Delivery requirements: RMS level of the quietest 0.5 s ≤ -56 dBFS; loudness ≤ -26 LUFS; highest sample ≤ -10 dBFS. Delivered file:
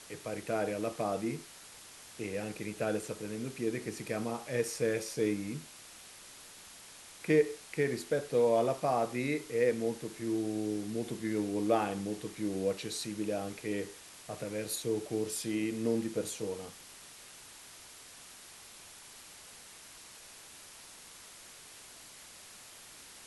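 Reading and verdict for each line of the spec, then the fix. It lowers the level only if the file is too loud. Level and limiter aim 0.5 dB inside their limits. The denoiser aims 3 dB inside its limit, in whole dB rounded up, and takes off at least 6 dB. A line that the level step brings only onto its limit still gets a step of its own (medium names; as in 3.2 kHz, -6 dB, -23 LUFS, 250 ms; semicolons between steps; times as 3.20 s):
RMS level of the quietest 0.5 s -52 dBFS: fail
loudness -34.0 LUFS: pass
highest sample -15.0 dBFS: pass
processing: noise reduction 7 dB, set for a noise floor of -52 dBFS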